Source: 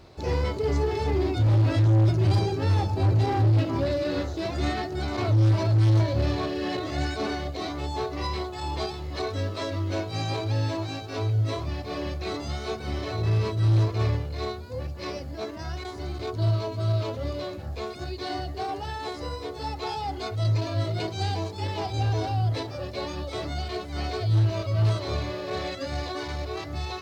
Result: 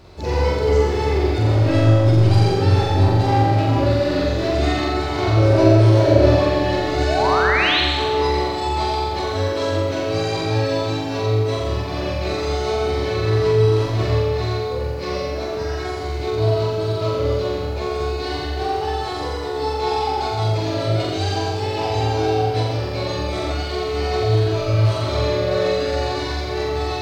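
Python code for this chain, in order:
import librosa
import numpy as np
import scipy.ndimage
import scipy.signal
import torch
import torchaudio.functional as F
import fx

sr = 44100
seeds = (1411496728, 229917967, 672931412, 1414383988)

p1 = fx.peak_eq(x, sr, hz=470.0, db=9.5, octaves=1.7, at=(5.37, 6.36))
p2 = fx.spec_paint(p1, sr, seeds[0], shape='rise', start_s=7.07, length_s=0.74, low_hz=580.0, high_hz=4400.0, level_db=-27.0)
p3 = p2 + fx.room_flutter(p2, sr, wall_m=7.5, rt60_s=0.89, dry=0)
p4 = fx.rev_freeverb(p3, sr, rt60_s=1.8, hf_ratio=0.65, predelay_ms=40, drr_db=2.5)
y = p4 * 10.0 ** (3.5 / 20.0)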